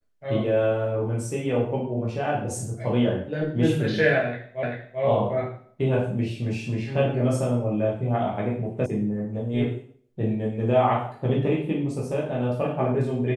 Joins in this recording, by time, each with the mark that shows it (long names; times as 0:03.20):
0:04.63: the same again, the last 0.39 s
0:08.86: cut off before it has died away